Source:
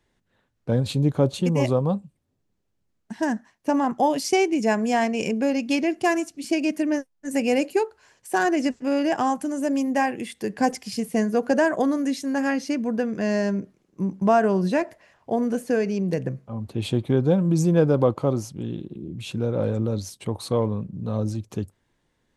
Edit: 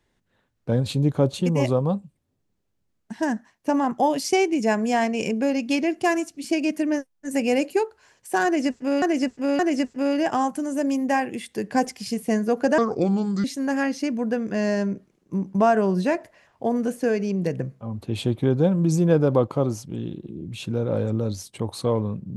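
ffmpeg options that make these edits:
-filter_complex "[0:a]asplit=5[s0][s1][s2][s3][s4];[s0]atrim=end=9.022[s5];[s1]atrim=start=8.448:end=9.022[s6];[s2]atrim=start=8.448:end=11.644[s7];[s3]atrim=start=11.64:end=12.11,asetpts=PTS-STARTPTS,asetrate=31311,aresample=44100[s8];[s4]atrim=start=12.106[s9];[s5][s6]acrossfade=d=0.004:c1=hsin:c2=hsin[s10];[s10][s7]acrossfade=d=0.004:c1=hsin:c2=hsin[s11];[s11][s8]acrossfade=d=0.004:c1=hsin:c2=hsin[s12];[s12][s9]acrossfade=d=0.004:c1=hsin:c2=hsin"

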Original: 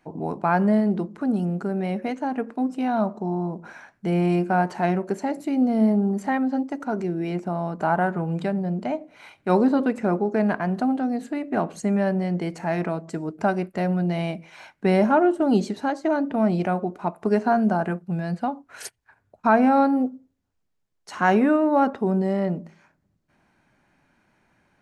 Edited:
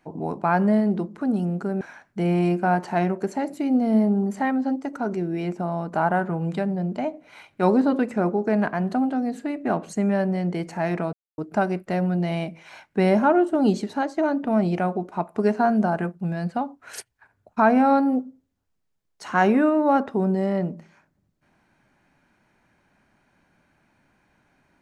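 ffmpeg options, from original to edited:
-filter_complex "[0:a]asplit=4[s0][s1][s2][s3];[s0]atrim=end=1.812[s4];[s1]atrim=start=3.678:end=13,asetpts=PTS-STARTPTS,afade=t=out:st=9.318:d=0.004:c=hsin[s5];[s2]atrim=start=13:end=13.25,asetpts=PTS-STARTPTS,volume=0[s6];[s3]atrim=start=13.25,asetpts=PTS-STARTPTS,afade=t=in:d=0.004:c=hsin[s7];[s5][s6][s7]concat=n=3:v=0:a=1[s8];[s4][s8]acrossfade=d=0.004:c1=hsin:c2=hsin"

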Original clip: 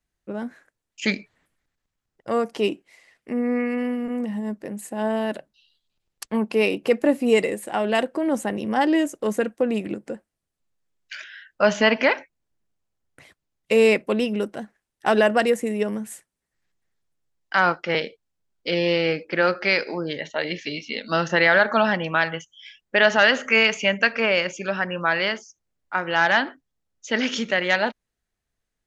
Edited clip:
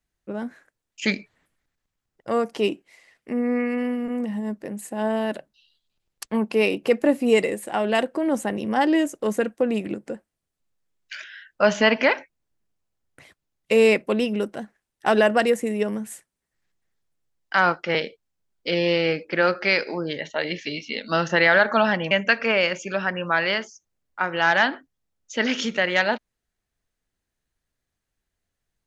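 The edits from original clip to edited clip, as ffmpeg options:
-filter_complex "[0:a]asplit=2[s0][s1];[s0]atrim=end=22.112[s2];[s1]atrim=start=23.848[s3];[s2][s3]acrossfade=d=0.004:c1=hsin:c2=hsin"

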